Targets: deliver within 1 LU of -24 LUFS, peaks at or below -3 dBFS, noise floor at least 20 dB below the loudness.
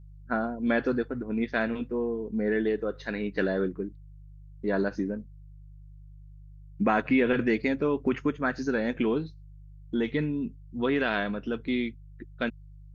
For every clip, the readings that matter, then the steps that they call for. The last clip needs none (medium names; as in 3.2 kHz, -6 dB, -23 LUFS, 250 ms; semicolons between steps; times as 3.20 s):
hum 50 Hz; highest harmonic 150 Hz; hum level -45 dBFS; loudness -29.0 LUFS; peak level -11.5 dBFS; loudness target -24.0 LUFS
-> de-hum 50 Hz, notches 3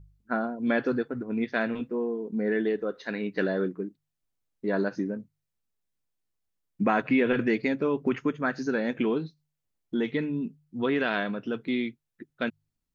hum not found; loudness -29.0 LUFS; peak level -11.5 dBFS; loudness target -24.0 LUFS
-> trim +5 dB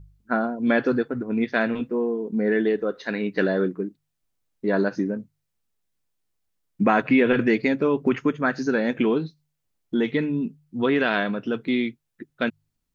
loudness -24.0 LUFS; peak level -6.5 dBFS; noise floor -78 dBFS